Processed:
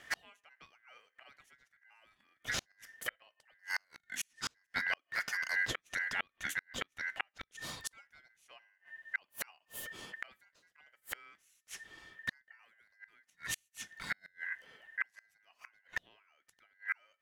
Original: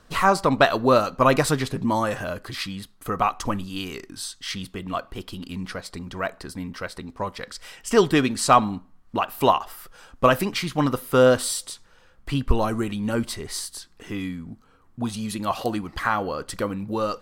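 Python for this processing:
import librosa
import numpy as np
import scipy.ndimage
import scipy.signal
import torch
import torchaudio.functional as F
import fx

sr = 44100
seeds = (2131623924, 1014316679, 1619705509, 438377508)

y = fx.gate_flip(x, sr, shuts_db=-22.0, range_db=-41)
y = y * np.sin(2.0 * np.pi * 1800.0 * np.arange(len(y)) / sr)
y = F.gain(torch.from_numpy(y), 1.5).numpy()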